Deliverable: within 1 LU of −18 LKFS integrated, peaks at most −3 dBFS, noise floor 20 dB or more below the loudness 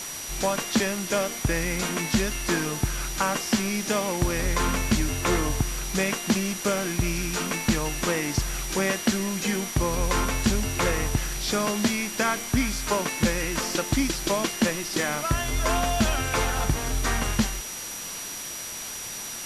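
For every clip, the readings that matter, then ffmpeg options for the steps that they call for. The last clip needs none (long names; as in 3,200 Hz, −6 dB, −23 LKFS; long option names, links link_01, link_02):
interfering tone 5,800 Hz; level of the tone −37 dBFS; background noise floor −35 dBFS; target noise floor −46 dBFS; integrated loudness −26.0 LKFS; sample peak −9.5 dBFS; target loudness −18.0 LKFS
→ -af "bandreject=frequency=5800:width=30"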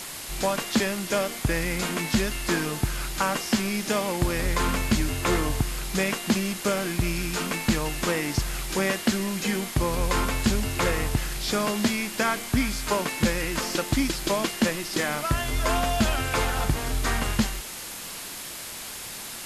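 interfering tone none found; background noise floor −37 dBFS; target noise floor −47 dBFS
→ -af "afftdn=noise_reduction=10:noise_floor=-37"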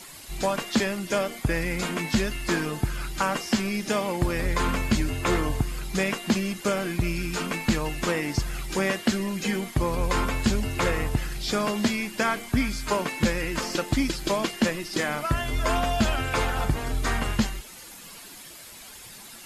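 background noise floor −44 dBFS; target noise floor −47 dBFS
→ -af "afftdn=noise_reduction=6:noise_floor=-44"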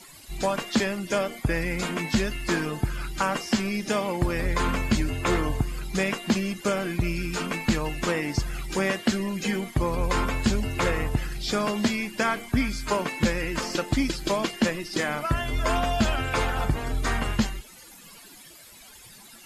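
background noise floor −48 dBFS; integrated loudness −27.0 LKFS; sample peak −10.5 dBFS; target loudness −18.0 LKFS
→ -af "volume=9dB,alimiter=limit=-3dB:level=0:latency=1"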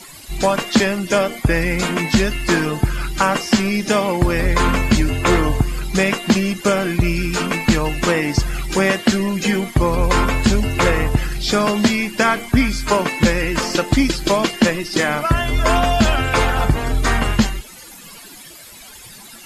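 integrated loudness −18.0 LKFS; sample peak −3.0 dBFS; background noise floor −39 dBFS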